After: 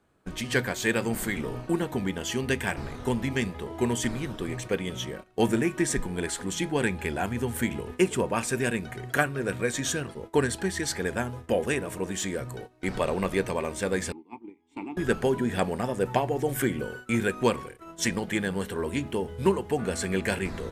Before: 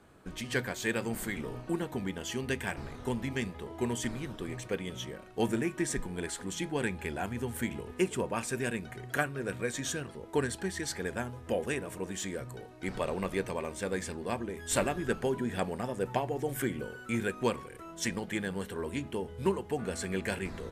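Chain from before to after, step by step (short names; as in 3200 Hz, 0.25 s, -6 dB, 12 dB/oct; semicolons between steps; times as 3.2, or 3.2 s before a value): 14.12–14.97 vowel filter u; 18.79–19.33 crackle 97/s -> 340/s -60 dBFS; gate -45 dBFS, range -15 dB; gain +6 dB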